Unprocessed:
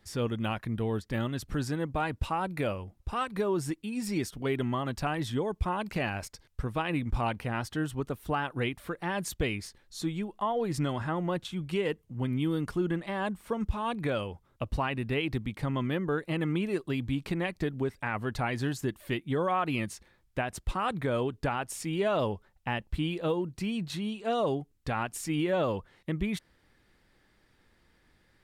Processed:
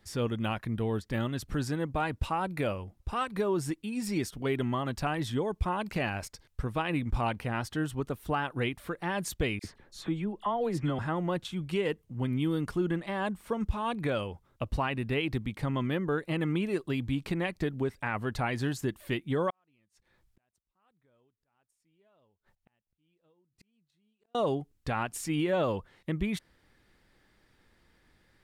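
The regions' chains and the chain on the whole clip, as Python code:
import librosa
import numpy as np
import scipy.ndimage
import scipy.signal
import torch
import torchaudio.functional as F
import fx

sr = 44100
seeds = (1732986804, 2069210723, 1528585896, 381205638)

y = fx.chain(x, sr, fx.peak_eq(hz=12000.0, db=-7.5, octaves=2.8),
    fx.dispersion(late='lows', ms=48.0, hz=1900.0),
    fx.band_squash(depth_pct=40), at=(9.59, 10.99))
y = fx.chain(y, sr, fx.gate_flip(shuts_db=-30.0, range_db=-40),
    fx.auto_swell(attack_ms=211.0), at=(19.5, 24.35))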